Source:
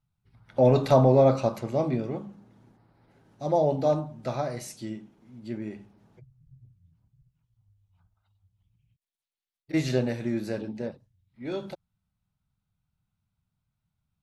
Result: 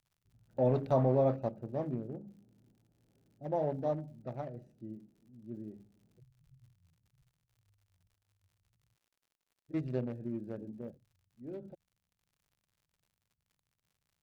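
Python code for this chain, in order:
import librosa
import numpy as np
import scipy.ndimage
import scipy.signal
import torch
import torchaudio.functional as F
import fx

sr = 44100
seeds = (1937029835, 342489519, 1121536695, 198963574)

y = fx.wiener(x, sr, points=41)
y = fx.high_shelf(y, sr, hz=2600.0, db=-11.5)
y = fx.dmg_crackle(y, sr, seeds[0], per_s=95.0, level_db=-52.0)
y = y * 10.0 ** (-8.5 / 20.0)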